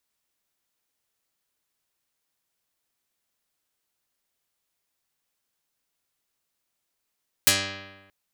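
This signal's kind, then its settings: plucked string G2, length 0.63 s, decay 1.19 s, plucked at 0.22, dark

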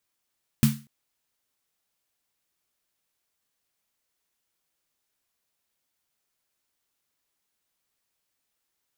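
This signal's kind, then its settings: snare drum length 0.24 s, tones 140 Hz, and 220 Hz, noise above 1100 Hz, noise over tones -10.5 dB, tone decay 0.31 s, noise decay 0.32 s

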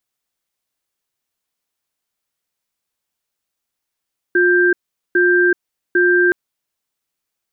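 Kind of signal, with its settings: cadence 356 Hz, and 1580 Hz, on 0.38 s, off 0.42 s, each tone -13 dBFS 1.97 s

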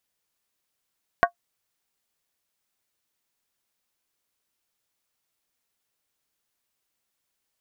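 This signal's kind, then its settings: skin hit, lowest mode 697 Hz, modes 5, decay 0.10 s, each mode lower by 2.5 dB, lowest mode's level -11 dB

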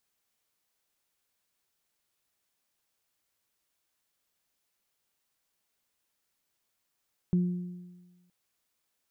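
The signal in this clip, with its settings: additive tone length 0.97 s, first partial 178 Hz, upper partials -14.5 dB, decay 1.29 s, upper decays 1.15 s, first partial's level -20.5 dB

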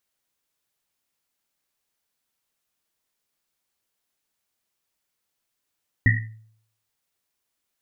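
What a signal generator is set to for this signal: Risset drum, pitch 110 Hz, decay 0.64 s, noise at 1900 Hz, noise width 180 Hz, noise 40%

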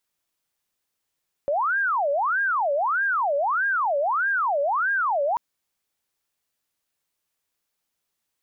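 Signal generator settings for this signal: siren wail 560–1620 Hz 1.6/s sine -20 dBFS 3.89 s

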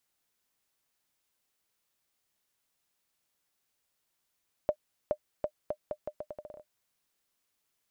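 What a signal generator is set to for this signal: bouncing ball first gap 0.42 s, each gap 0.79, 603 Hz, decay 70 ms -16 dBFS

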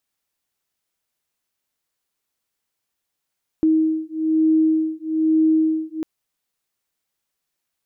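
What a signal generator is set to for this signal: beating tones 316 Hz, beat 1.1 Hz, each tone -18.5 dBFS 2.40 s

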